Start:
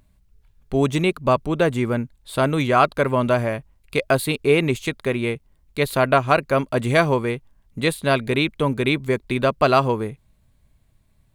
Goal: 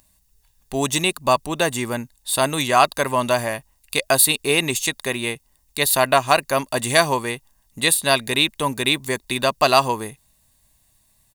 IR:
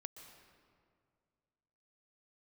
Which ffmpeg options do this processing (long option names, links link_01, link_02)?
-af "bass=frequency=250:gain=-11,treble=frequency=4000:gain=15,aecho=1:1:1.1:0.44,volume=1dB"